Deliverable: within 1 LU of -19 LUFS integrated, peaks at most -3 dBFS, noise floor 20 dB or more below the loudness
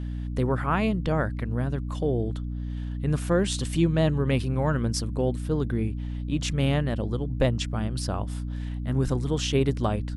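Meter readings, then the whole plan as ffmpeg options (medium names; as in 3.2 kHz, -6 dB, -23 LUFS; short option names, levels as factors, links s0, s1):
hum 60 Hz; highest harmonic 300 Hz; hum level -29 dBFS; loudness -27.0 LUFS; peak level -10.0 dBFS; loudness target -19.0 LUFS
-> -af "bandreject=f=60:t=h:w=4,bandreject=f=120:t=h:w=4,bandreject=f=180:t=h:w=4,bandreject=f=240:t=h:w=4,bandreject=f=300:t=h:w=4"
-af "volume=2.51,alimiter=limit=0.708:level=0:latency=1"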